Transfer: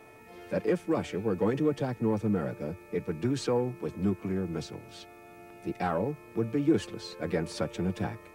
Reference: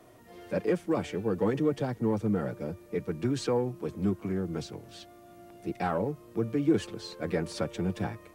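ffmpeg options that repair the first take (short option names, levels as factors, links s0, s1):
-af "bandreject=f=439:t=h:w=4,bandreject=f=878:t=h:w=4,bandreject=f=1317:t=h:w=4,bandreject=f=1756:t=h:w=4,bandreject=f=2195:t=h:w=4,bandreject=f=2500:w=30"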